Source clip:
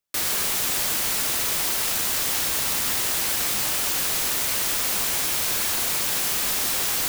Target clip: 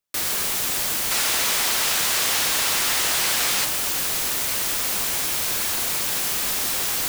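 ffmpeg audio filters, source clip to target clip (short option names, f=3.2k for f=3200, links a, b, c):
-filter_complex "[0:a]asettb=1/sr,asplit=3[a][b][c];[a]atrim=end=1.114[d];[b]atrim=start=1.11:end=3.65,asetpts=PTS-STARTPTS,afade=t=in:d=0.004:c=qsin,afade=t=out:st=2.536:d=0.004:c=qsin,asplit=2[e][f];[f]highpass=f=720:p=1,volume=17dB,asoftclip=type=tanh:threshold=-11dB[g];[e][g]amix=inputs=2:normalize=0,lowpass=f=6.2k:p=1,volume=-6dB[h];[c]atrim=start=3.646[i];[d][h]acrossfade=d=0.004:c1=hsin:c2=qsin[j];[j][i]acrossfade=d=0.004:c1=qsin:c2=hsin"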